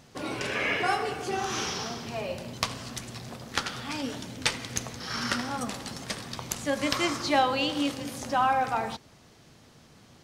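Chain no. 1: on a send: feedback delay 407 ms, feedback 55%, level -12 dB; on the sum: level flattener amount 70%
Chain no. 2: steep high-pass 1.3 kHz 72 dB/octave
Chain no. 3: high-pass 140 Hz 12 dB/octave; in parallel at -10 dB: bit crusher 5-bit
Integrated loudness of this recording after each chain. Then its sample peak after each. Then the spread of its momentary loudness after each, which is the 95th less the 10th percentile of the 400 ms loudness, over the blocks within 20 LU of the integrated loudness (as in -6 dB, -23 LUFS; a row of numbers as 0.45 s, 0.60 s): -23.0 LUFS, -33.0 LUFS, -27.5 LUFS; -3.0 dBFS, -6.0 dBFS, -6.0 dBFS; 4 LU, 11 LU, 12 LU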